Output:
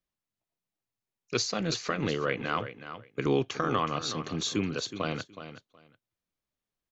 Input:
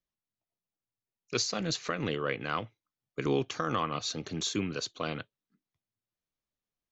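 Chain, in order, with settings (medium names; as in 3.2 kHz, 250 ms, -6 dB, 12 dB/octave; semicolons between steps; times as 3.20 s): treble shelf 4.9 kHz -4.5 dB; on a send: feedback delay 370 ms, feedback 17%, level -11.5 dB; on the sum: trim +2.5 dB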